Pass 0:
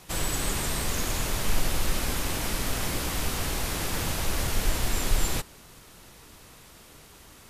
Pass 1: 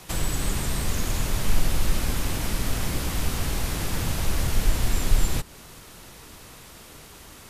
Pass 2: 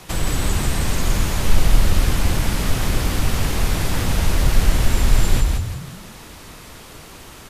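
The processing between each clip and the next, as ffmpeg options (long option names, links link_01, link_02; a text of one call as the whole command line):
ffmpeg -i in.wav -filter_complex "[0:a]acrossover=split=240[link_01][link_02];[link_02]acompressor=threshold=-38dB:ratio=2.5[link_03];[link_01][link_03]amix=inputs=2:normalize=0,volume=5dB" out.wav
ffmpeg -i in.wav -filter_complex "[0:a]highshelf=frequency=6000:gain=-5,asplit=2[link_01][link_02];[link_02]asplit=5[link_03][link_04][link_05][link_06][link_07];[link_03]adelay=169,afreqshift=-47,volume=-3.5dB[link_08];[link_04]adelay=338,afreqshift=-94,volume=-11.5dB[link_09];[link_05]adelay=507,afreqshift=-141,volume=-19.4dB[link_10];[link_06]adelay=676,afreqshift=-188,volume=-27.4dB[link_11];[link_07]adelay=845,afreqshift=-235,volume=-35.3dB[link_12];[link_08][link_09][link_10][link_11][link_12]amix=inputs=5:normalize=0[link_13];[link_01][link_13]amix=inputs=2:normalize=0,volume=5dB" out.wav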